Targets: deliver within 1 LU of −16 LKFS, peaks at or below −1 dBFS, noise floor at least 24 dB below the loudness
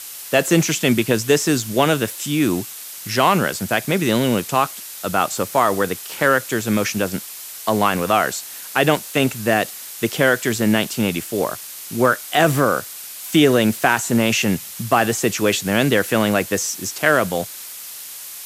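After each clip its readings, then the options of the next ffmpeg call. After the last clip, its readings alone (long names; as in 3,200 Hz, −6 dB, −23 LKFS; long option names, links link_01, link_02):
background noise floor −35 dBFS; target noise floor −43 dBFS; integrated loudness −19.0 LKFS; sample peak −2.0 dBFS; target loudness −16.0 LKFS
→ -af "afftdn=noise_reduction=8:noise_floor=-35"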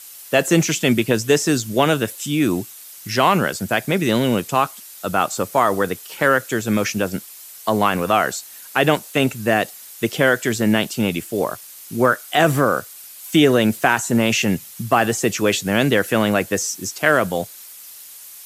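background noise floor −40 dBFS; target noise floor −43 dBFS
→ -af "afftdn=noise_reduction=6:noise_floor=-40"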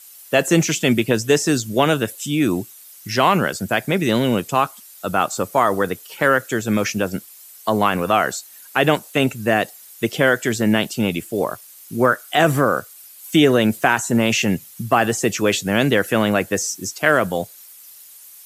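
background noise floor −44 dBFS; integrated loudness −19.0 LKFS; sample peak −2.5 dBFS; target loudness −16.0 LKFS
→ -af "volume=3dB,alimiter=limit=-1dB:level=0:latency=1"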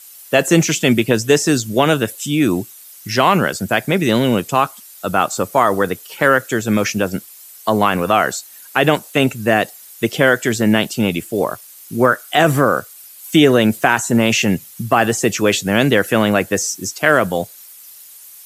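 integrated loudness −16.5 LKFS; sample peak −1.0 dBFS; background noise floor −41 dBFS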